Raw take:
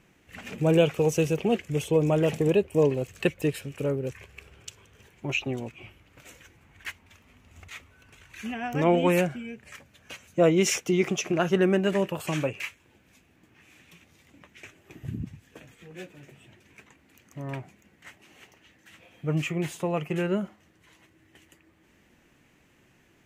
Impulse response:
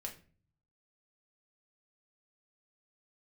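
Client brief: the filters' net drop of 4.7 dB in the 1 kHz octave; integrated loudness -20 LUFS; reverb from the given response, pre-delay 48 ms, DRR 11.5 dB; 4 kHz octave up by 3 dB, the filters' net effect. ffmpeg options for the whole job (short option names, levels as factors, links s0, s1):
-filter_complex "[0:a]equalizer=f=1000:t=o:g=-7.5,equalizer=f=4000:t=o:g=5.5,asplit=2[s0][s1];[1:a]atrim=start_sample=2205,adelay=48[s2];[s1][s2]afir=irnorm=-1:irlink=0,volume=0.335[s3];[s0][s3]amix=inputs=2:normalize=0,volume=2.24"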